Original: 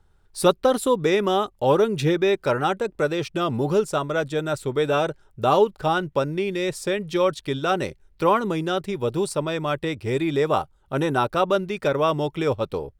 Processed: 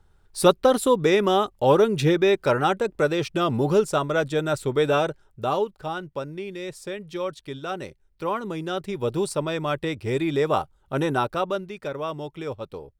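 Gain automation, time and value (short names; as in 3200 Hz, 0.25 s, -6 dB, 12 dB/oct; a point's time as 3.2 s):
4.89 s +1 dB
5.77 s -8.5 dB
8.23 s -8.5 dB
9.07 s -1 dB
11.12 s -1 dB
11.79 s -9 dB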